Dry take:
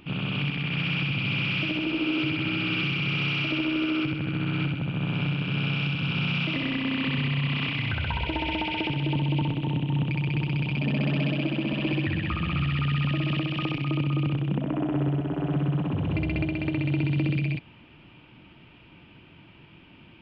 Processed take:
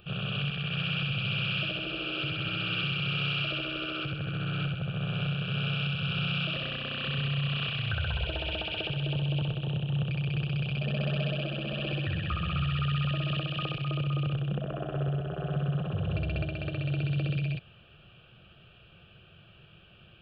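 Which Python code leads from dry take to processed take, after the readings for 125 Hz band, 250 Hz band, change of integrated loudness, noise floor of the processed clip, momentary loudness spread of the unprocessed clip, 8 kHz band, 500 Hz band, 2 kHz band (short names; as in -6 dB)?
-3.0 dB, -8.5 dB, -4.0 dB, -56 dBFS, 3 LU, n/a, -3.0 dB, -4.5 dB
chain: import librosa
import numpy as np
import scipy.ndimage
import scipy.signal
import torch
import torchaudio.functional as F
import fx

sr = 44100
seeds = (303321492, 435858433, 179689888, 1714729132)

y = fx.fixed_phaser(x, sr, hz=1400.0, stages=8)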